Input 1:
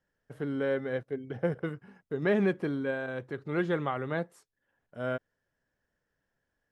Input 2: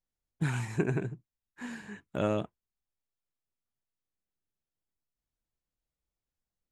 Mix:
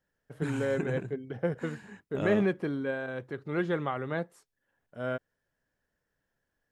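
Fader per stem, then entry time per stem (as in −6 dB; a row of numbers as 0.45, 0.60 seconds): −0.5, −4.5 decibels; 0.00, 0.00 seconds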